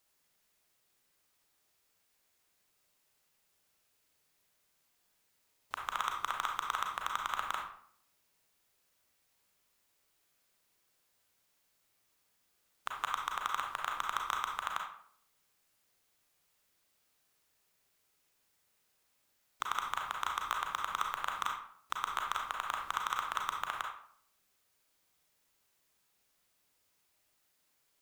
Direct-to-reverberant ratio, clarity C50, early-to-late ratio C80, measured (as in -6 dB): 0.5 dB, 3.5 dB, 8.5 dB